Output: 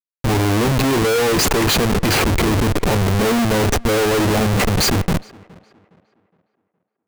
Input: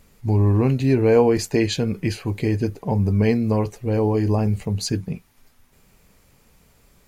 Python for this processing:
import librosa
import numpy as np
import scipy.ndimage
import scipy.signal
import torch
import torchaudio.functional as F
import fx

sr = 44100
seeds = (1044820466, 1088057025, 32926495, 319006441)

p1 = fx.highpass(x, sr, hz=470.0, slope=6)
p2 = fx.high_shelf(p1, sr, hz=4600.0, db=3.0)
p3 = fx.notch(p2, sr, hz=7800.0, q=14.0)
p4 = fx.leveller(p3, sr, passes=3)
p5 = fx.over_compress(p4, sr, threshold_db=-31.0, ratio=-0.5)
p6 = p4 + F.gain(torch.from_numpy(p5), -1.5).numpy()
p7 = fx.schmitt(p6, sr, flips_db=-19.5)
p8 = p7 + fx.echo_tape(p7, sr, ms=414, feedback_pct=40, wet_db=-17, lp_hz=2800.0, drive_db=23.0, wow_cents=9, dry=0)
y = F.gain(torch.from_numpy(p8), 2.0).numpy()